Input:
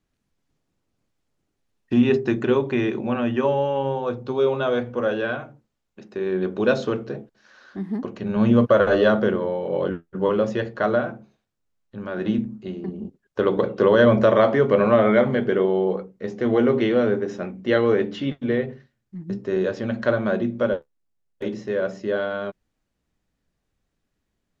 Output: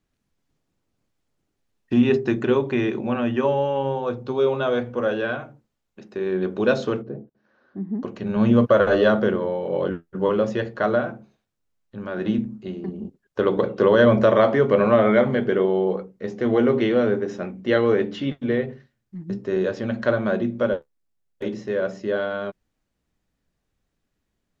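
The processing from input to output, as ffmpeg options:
ffmpeg -i in.wav -filter_complex "[0:a]asplit=3[link_01][link_02][link_03];[link_01]afade=type=out:start_time=7.01:duration=0.02[link_04];[link_02]bandpass=frequency=190:width_type=q:width=0.56,afade=type=in:start_time=7.01:duration=0.02,afade=type=out:start_time=8.01:duration=0.02[link_05];[link_03]afade=type=in:start_time=8.01:duration=0.02[link_06];[link_04][link_05][link_06]amix=inputs=3:normalize=0" out.wav

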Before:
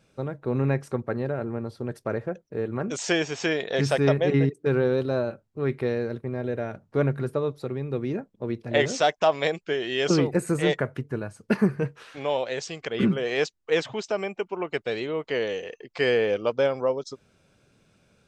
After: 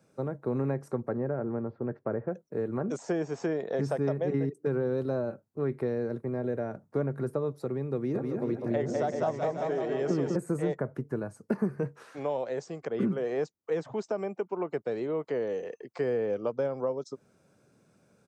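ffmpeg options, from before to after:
ffmpeg -i in.wav -filter_complex "[0:a]asettb=1/sr,asplit=3[link_01][link_02][link_03];[link_01]atrim=end=1.174[link_04];[link_02]atrim=start=1.17:end=2.28,asetpts=PTS-STARTPTS,afade=type=in:duration=0.004:curve=qsin,afade=type=out:start_time=1.106:duration=0.004:curve=qsin,lowpass=frequency=2300:width=0.5412,lowpass=frequency=2300:width=1.3066[link_05];[link_03]atrim=start=2.276[link_06];[link_04][link_05]acrossfade=duration=0.004:curve1=hsin:curve2=qsin[link_07];[link_07][link_06]acrossfade=duration=0.004:curve1=qsin:curve2=hsin,asplit=3[link_08][link_09][link_10];[link_08]afade=type=out:start_time=8.14:duration=0.02[link_11];[link_09]aecho=1:1:200|380|542|687.8|819:0.631|0.398|0.251|0.158|0.1,afade=type=in:start_time=8.14:duration=0.02,afade=type=out:start_time=10.35:duration=0.02[link_12];[link_10]afade=type=in:start_time=10.35:duration=0.02[link_13];[link_11][link_12][link_13]amix=inputs=3:normalize=0,highpass=130,equalizer=frequency=3100:width_type=o:width=1.3:gain=-12.5,acrossover=split=200|1300[link_14][link_15][link_16];[link_14]acompressor=threshold=-34dB:ratio=4[link_17];[link_15]acompressor=threshold=-28dB:ratio=4[link_18];[link_16]acompressor=threshold=-51dB:ratio=4[link_19];[link_17][link_18][link_19]amix=inputs=3:normalize=0" out.wav

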